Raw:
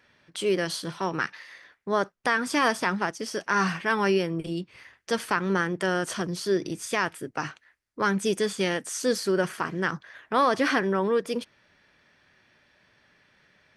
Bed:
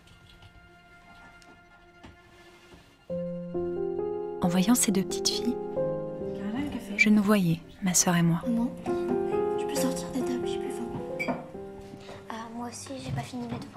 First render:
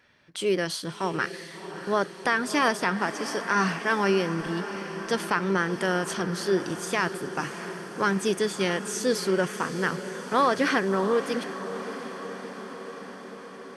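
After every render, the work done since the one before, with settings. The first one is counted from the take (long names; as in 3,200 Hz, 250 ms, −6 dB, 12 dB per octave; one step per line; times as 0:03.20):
feedback delay with all-pass diffusion 669 ms, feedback 70%, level −11.5 dB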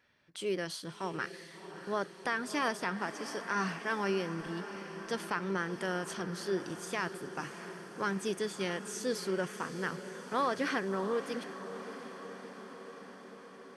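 level −9 dB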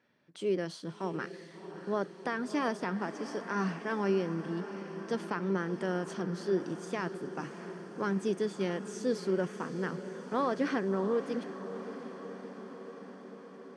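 Chebyshev band-pass filter 180–7,400 Hz, order 2
tilt shelving filter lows +5.5 dB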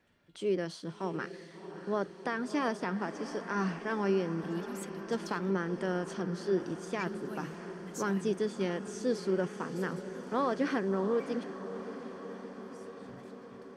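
mix in bed −22.5 dB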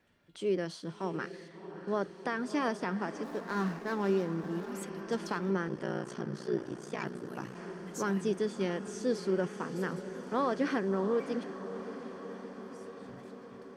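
0:01.48–0:01.88: high-shelf EQ 4,700 Hz −11 dB
0:03.23–0:04.72: running median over 15 samples
0:05.68–0:07.56: ring modulation 30 Hz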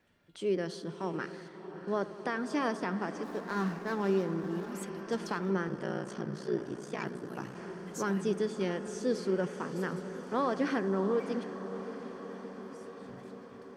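bucket-brigade delay 88 ms, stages 1,024, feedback 84%, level −17.5 dB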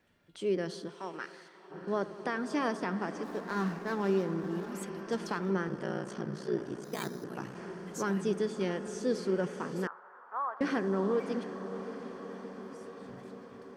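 0:00.87–0:01.70: high-pass filter 590 Hz → 1,400 Hz 6 dB per octave
0:06.84–0:07.24: bad sample-rate conversion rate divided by 8×, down filtered, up hold
0:09.87–0:10.61: flat-topped band-pass 1,100 Hz, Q 1.6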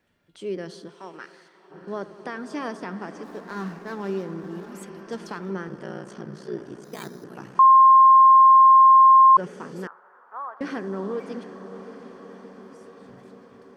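0:07.59–0:09.37: beep over 1,060 Hz −9 dBFS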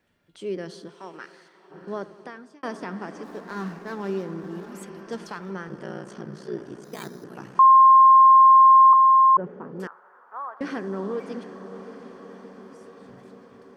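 0:01.96–0:02.63: fade out
0:05.24–0:05.70: parametric band 290 Hz −6.5 dB 1.2 octaves
0:08.93–0:09.80: low-pass filter 1,100 Hz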